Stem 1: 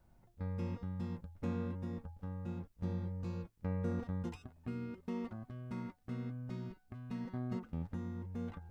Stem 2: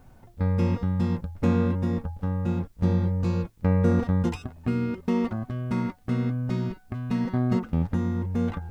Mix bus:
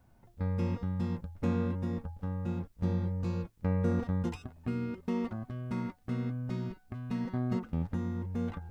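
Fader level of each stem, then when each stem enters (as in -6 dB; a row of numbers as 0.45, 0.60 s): +2.0, -14.5 dB; 0.00, 0.00 s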